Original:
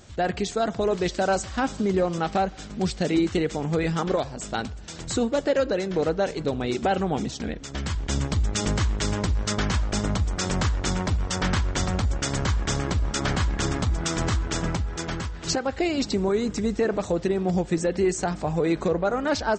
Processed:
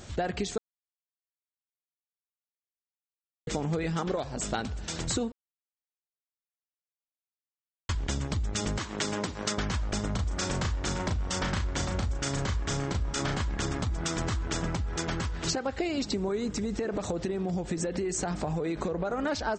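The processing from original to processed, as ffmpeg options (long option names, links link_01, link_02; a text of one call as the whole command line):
ffmpeg -i in.wav -filter_complex "[0:a]asettb=1/sr,asplit=3[link_01][link_02][link_03];[link_01]atrim=end=8.784[link_04];[link_02]atrim=start=8.78:end=9.58,asetpts=PTS-STARTPTS,afade=type=in:duration=0.004:curve=qsin,afade=type=out:start_time=0.796:duration=0.004:curve=qsin,highpass=200[link_05];[link_03]atrim=start=9.576[link_06];[link_04][link_05]acrossfade=duration=0.004:curve1=hsin:curve2=qsin[link_07];[link_07][link_06]acrossfade=duration=0.004:curve1=qsin:curve2=hsin,asettb=1/sr,asplit=3[link_08][link_09][link_10];[link_08]atrim=end=10.114[link_11];[link_09]atrim=start=10.11:end=13.42,asetpts=PTS-STARTPTS,afade=type=in:duration=0.004:curve=qsin,afade=type=out:start_time=3.306:duration=0.004:curve=qsin,asplit=2[link_12][link_13];[link_13]adelay=36,volume=-4.5dB[link_14];[link_12][link_14]amix=inputs=2:normalize=0,atrim=end_sample=145971[link_15];[link_10]atrim=start=13.416[link_16];[link_11][link_15]acrossfade=duration=0.004:curve1=hsin:curve2=qsin[link_17];[link_17][link_16]acrossfade=duration=0.004:curve1=qsin:curve2=hsin,asplit=3[link_18][link_19][link_20];[link_18]afade=type=out:start_time=16.51:duration=0.02[link_21];[link_19]acompressor=threshold=-26dB:ratio=6:attack=3.2:release=140:knee=1:detection=peak,afade=type=in:start_time=16.51:duration=0.02,afade=type=out:start_time=19.18:duration=0.02[link_22];[link_20]afade=type=in:start_time=19.18:duration=0.02[link_23];[link_21][link_22][link_23]amix=inputs=3:normalize=0,asplit=5[link_24][link_25][link_26][link_27][link_28];[link_24]atrim=end=0.58,asetpts=PTS-STARTPTS,afade=type=out:start_time=0.576:duration=0.004:curve=hsin[link_29];[link_25]atrim=start=0.58:end=3.47,asetpts=PTS-STARTPTS,volume=0[link_30];[link_26]atrim=start=3.47:end=5.32,asetpts=PTS-STARTPTS,afade=type=in:duration=0.004:curve=hsin,afade=type=out:start_time=1.846:duration=0.004:curve=hsin[link_31];[link_27]atrim=start=5.32:end=7.89,asetpts=PTS-STARTPTS,volume=0[link_32];[link_28]atrim=start=7.89,asetpts=PTS-STARTPTS,afade=type=in:duration=0.004:curve=hsin[link_33];[link_29][link_30][link_31][link_32][link_33]concat=n=5:v=0:a=1,acompressor=threshold=-31dB:ratio=6,volume=3.5dB" out.wav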